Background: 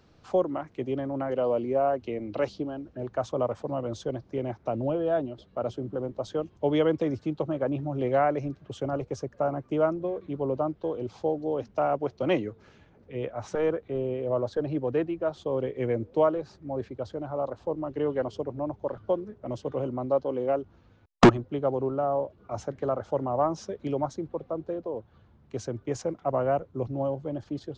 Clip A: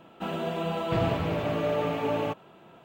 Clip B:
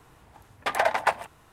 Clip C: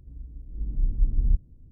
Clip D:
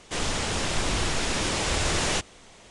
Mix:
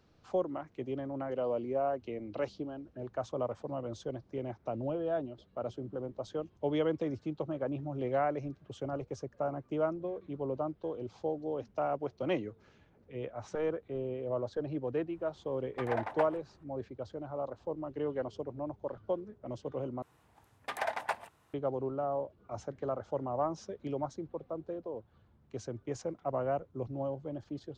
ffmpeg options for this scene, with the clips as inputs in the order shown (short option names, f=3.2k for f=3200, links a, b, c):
-filter_complex "[2:a]asplit=2[a][b];[0:a]volume=-7dB[c];[a]lowpass=f=1.3k:p=1[d];[b]highpass=68[e];[c]asplit=2[f][g];[f]atrim=end=20.024[h];[e]atrim=end=1.52,asetpts=PTS-STARTPTS,volume=-11dB[i];[g]atrim=start=21.536[j];[d]atrim=end=1.52,asetpts=PTS-STARTPTS,volume=-10.5dB,afade=t=in:d=0.004:c=hsin,afade=t=out:st=1.516:d=0.004:c=hsin,adelay=15120[k];[h][i]acrossfade=d=0.004:c1=hsin:c2=hsin[l];[l][j]acrossfade=d=0.004:c1=hsin:c2=hsin[m];[m][k]amix=inputs=2:normalize=0"